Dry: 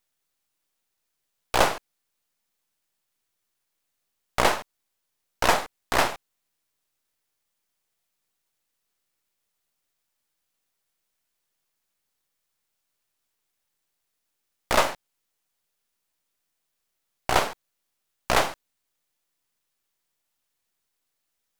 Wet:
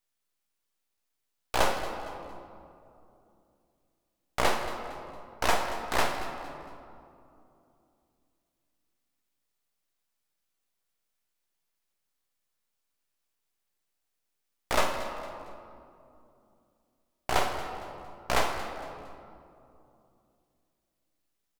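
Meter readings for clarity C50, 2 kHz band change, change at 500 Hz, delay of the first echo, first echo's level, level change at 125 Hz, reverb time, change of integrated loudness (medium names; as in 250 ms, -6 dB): 5.5 dB, -4.5 dB, -4.0 dB, 229 ms, -16.5 dB, -3.5 dB, 2.7 s, -6.5 dB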